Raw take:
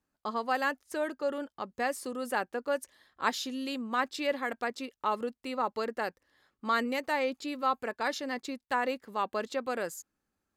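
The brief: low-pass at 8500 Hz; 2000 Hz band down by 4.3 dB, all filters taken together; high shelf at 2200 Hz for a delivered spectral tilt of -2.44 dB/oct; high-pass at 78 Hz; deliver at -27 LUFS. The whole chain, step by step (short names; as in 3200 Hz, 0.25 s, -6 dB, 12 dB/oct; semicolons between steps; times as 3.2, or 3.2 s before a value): HPF 78 Hz; LPF 8500 Hz; bell 2000 Hz -8.5 dB; high shelf 2200 Hz +5.5 dB; gain +7 dB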